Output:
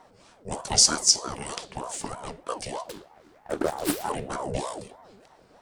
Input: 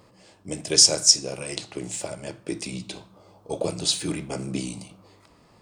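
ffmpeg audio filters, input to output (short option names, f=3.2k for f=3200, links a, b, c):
-filter_complex "[0:a]asettb=1/sr,asplit=3[a][b][c];[a]atrim=end=2.854[d];[b]atrim=start=2.85:end=4.1,asetpts=PTS-STARTPTS,afade=t=in:d=0.004:c=qsin,afade=t=out:st=1.246:d=0.004:c=qsin,aeval=exprs='abs(val(0))':c=same[e];[c]atrim=start=4.096[f];[d][e]acrossfade=d=0.004:c1=hsin:c2=qsin[g];[g][f]acrossfade=d=0.004:c1=qsin:c2=hsin,equalizer=f=83:t=o:w=1.1:g=12,aeval=exprs='val(0)*sin(2*PI*570*n/s+570*0.5/3.2*sin(2*PI*3.2*n/s))':c=same"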